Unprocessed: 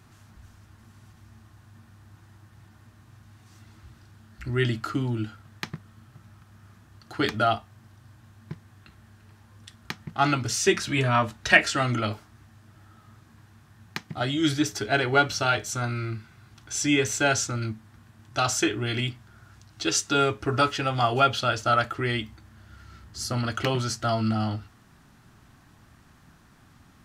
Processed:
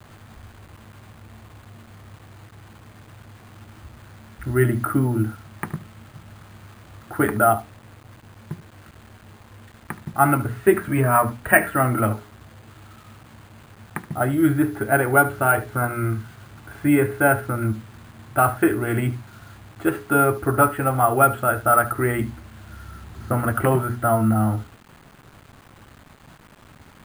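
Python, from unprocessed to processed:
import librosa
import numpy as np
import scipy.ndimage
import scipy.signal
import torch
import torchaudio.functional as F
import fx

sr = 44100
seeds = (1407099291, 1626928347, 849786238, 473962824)

p1 = scipy.signal.sosfilt(scipy.signal.butter(4, 1700.0, 'lowpass', fs=sr, output='sos'), x)
p2 = fx.hum_notches(p1, sr, base_hz=60, count=7)
p3 = fx.rider(p2, sr, range_db=4, speed_s=0.5)
p4 = p2 + (p3 * librosa.db_to_amplitude(0.0))
p5 = fx.quant_dither(p4, sr, seeds[0], bits=8, dither='none')
p6 = p5 + fx.echo_single(p5, sr, ms=74, db=-16.5, dry=0)
p7 = np.repeat(scipy.signal.resample_poly(p6, 1, 4), 4)[:len(p6)]
y = p7 * librosa.db_to_amplitude(1.0)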